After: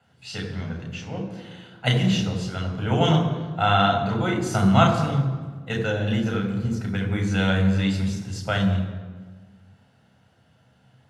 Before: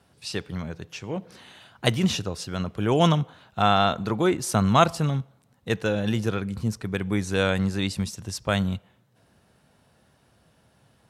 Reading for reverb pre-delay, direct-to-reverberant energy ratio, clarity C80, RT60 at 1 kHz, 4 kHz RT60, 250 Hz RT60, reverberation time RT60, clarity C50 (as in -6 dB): 3 ms, 1.0 dB, 8.0 dB, 1.4 s, 1.0 s, 1.7 s, 1.4 s, 6.5 dB